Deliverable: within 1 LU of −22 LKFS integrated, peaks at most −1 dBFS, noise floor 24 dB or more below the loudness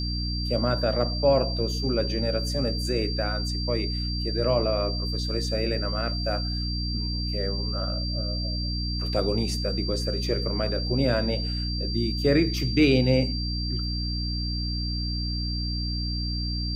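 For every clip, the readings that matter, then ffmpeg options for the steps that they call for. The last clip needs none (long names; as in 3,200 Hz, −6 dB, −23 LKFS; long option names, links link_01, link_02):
mains hum 60 Hz; hum harmonics up to 300 Hz; level of the hum −27 dBFS; interfering tone 4,700 Hz; level of the tone −32 dBFS; integrated loudness −26.5 LKFS; sample peak −9.0 dBFS; target loudness −22.0 LKFS
→ -af "bandreject=frequency=60:width_type=h:width=4,bandreject=frequency=120:width_type=h:width=4,bandreject=frequency=180:width_type=h:width=4,bandreject=frequency=240:width_type=h:width=4,bandreject=frequency=300:width_type=h:width=4"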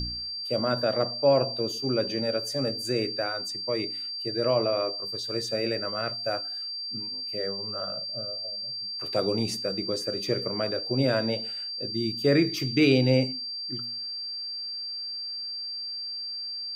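mains hum none found; interfering tone 4,700 Hz; level of the tone −32 dBFS
→ -af "bandreject=frequency=4700:width=30"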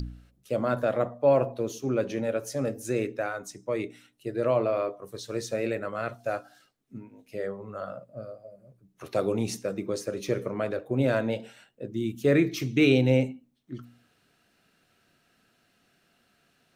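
interfering tone none found; integrated loudness −28.5 LKFS; sample peak −9.5 dBFS; target loudness −22.0 LKFS
→ -af "volume=6.5dB"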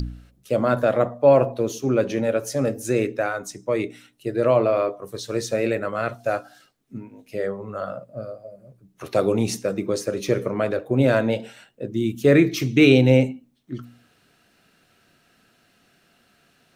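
integrated loudness −22.0 LKFS; sample peak −3.0 dBFS; background noise floor −62 dBFS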